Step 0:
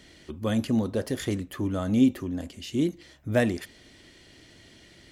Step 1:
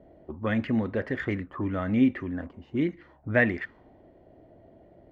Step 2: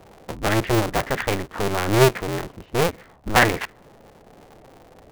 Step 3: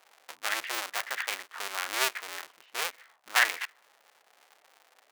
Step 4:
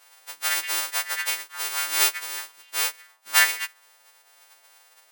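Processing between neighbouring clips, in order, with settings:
touch-sensitive low-pass 620–2000 Hz up, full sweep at -25 dBFS; trim -1.5 dB
cycle switcher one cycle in 2, inverted; trim +6 dB
high-pass 1.4 kHz 12 dB/octave; trim -3.5 dB
partials quantised in pitch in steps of 2 st

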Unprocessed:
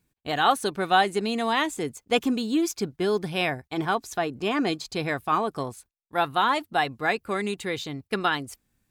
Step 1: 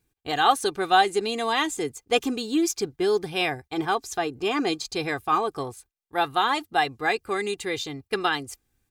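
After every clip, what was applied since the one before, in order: comb 2.5 ms, depth 52%; dynamic bell 6.3 kHz, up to +5 dB, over -43 dBFS, Q 0.88; trim -1 dB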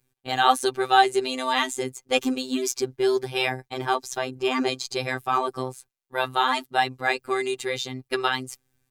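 robot voice 129 Hz; trim +3 dB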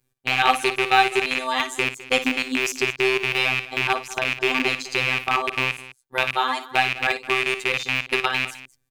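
rattle on loud lows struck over -36 dBFS, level -9 dBFS; transient shaper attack +2 dB, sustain -2 dB; multi-tap echo 56/206 ms -12/-17.5 dB; trim -1 dB

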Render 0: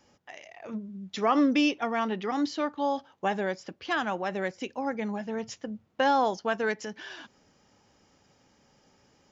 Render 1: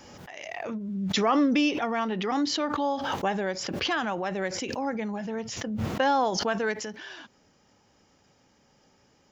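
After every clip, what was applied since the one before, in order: swell ahead of each attack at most 28 dB/s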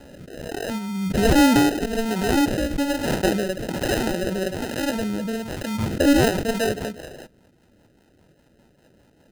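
sample-and-hold 39×; rotary cabinet horn 1.2 Hz, later 5 Hz, at 5.93 s; trim +7.5 dB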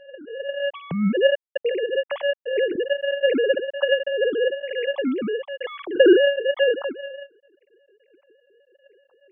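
formants replaced by sine waves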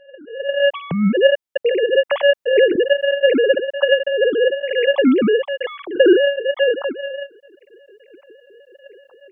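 level rider gain up to 14 dB; trim -1.5 dB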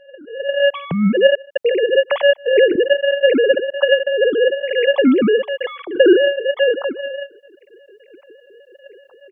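echo from a far wall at 26 m, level -27 dB; trim +1 dB

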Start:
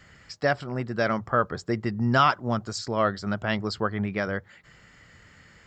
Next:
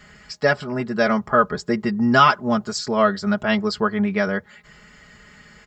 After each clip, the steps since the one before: comb 4.8 ms, depth 79%; trim +4 dB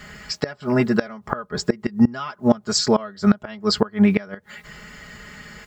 bit crusher 11-bit; inverted gate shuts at -12 dBFS, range -24 dB; trim +7 dB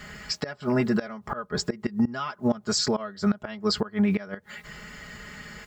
peak limiter -13.5 dBFS, peak gain reduction 10 dB; trim -1.5 dB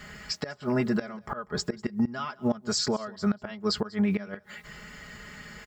delay 194 ms -22.5 dB; trim -2.5 dB

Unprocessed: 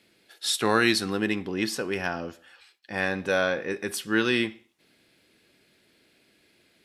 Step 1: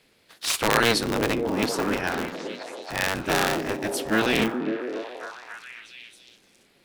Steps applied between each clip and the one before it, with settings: cycle switcher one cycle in 3, inverted; repeats whose band climbs or falls 274 ms, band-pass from 260 Hz, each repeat 0.7 oct, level -1 dB; trim +1 dB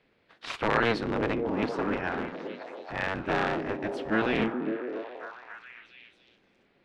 low-pass 2.3 kHz 12 dB/octave; trim -3.5 dB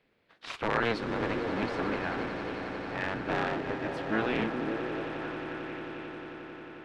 echo with a slow build-up 89 ms, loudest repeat 8, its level -15 dB; trim -3.5 dB

